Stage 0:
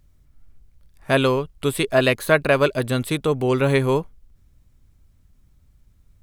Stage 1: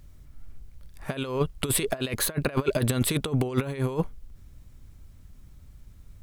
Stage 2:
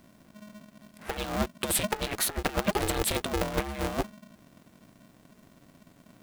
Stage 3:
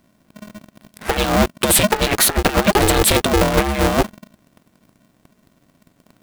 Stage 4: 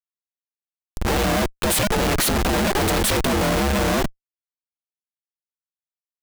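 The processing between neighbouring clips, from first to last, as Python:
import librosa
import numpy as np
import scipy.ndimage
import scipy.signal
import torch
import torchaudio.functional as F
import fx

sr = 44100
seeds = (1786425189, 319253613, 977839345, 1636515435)

y1 = fx.over_compress(x, sr, threshold_db=-25.0, ratio=-0.5)
y2 = fx.low_shelf(y1, sr, hz=130.0, db=-10.0)
y2 = y2 * np.sign(np.sin(2.0 * np.pi * 210.0 * np.arange(len(y2)) / sr))
y2 = y2 * 10.0 ** (-1.0 / 20.0)
y3 = fx.leveller(y2, sr, passes=3)
y3 = y3 * 10.0 ** (4.5 / 20.0)
y4 = fx.law_mismatch(y3, sr, coded='A')
y4 = fx.schmitt(y4, sr, flips_db=-26.0)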